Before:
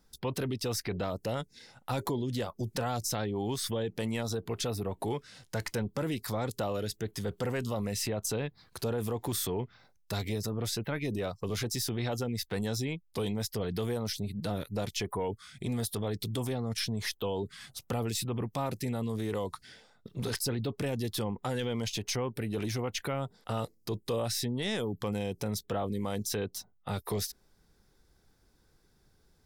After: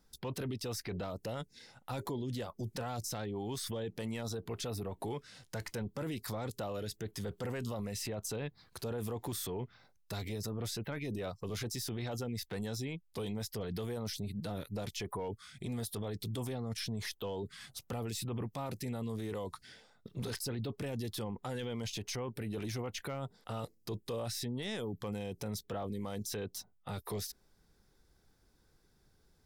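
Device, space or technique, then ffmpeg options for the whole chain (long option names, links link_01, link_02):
clipper into limiter: -af "asoftclip=type=hard:threshold=-24.5dB,alimiter=level_in=5dB:limit=-24dB:level=0:latency=1:release=13,volume=-5dB,volume=-2.5dB"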